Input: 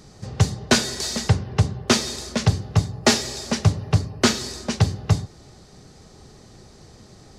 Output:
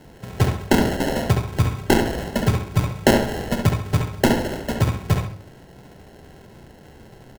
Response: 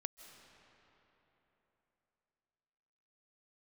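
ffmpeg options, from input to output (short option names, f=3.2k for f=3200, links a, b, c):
-filter_complex "[0:a]bandreject=f=50:t=h:w=6,bandreject=f=100:t=h:w=6,acrossover=split=120|3700[a][b][c];[c]aexciter=amount=4:drive=9.2:freq=8.2k[d];[a][b][d]amix=inputs=3:normalize=0,acrusher=samples=37:mix=1:aa=0.000001,asplit=2[e][f];[f]adelay=69,lowpass=f=3.6k:p=1,volume=-4.5dB,asplit=2[g][h];[h]adelay=69,lowpass=f=3.6k:p=1,volume=0.33,asplit=2[i][j];[j]adelay=69,lowpass=f=3.6k:p=1,volume=0.33,asplit=2[k][l];[l]adelay=69,lowpass=f=3.6k:p=1,volume=0.33[m];[e][g][i][k][m]amix=inputs=5:normalize=0"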